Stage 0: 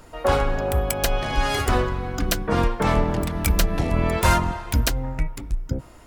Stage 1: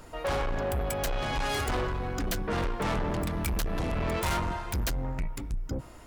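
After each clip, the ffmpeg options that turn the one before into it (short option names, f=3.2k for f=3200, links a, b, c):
-af "asoftclip=type=tanh:threshold=-24.5dB,volume=-1.5dB"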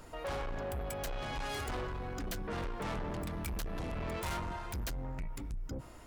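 -af "alimiter=level_in=7dB:limit=-24dB:level=0:latency=1:release=33,volume=-7dB,volume=-3.5dB"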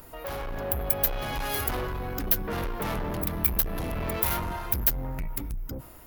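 -af "dynaudnorm=f=120:g=9:m=5dB,aexciter=amount=4.5:drive=9.6:freq=11k,volume=2dB"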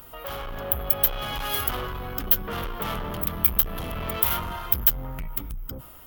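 -af "equalizer=f=315:t=o:w=0.33:g=-4,equalizer=f=1.25k:t=o:w=0.33:g=7,equalizer=f=3.15k:t=o:w=0.33:g=10,equalizer=f=16k:t=o:w=0.33:g=10,volume=-1dB"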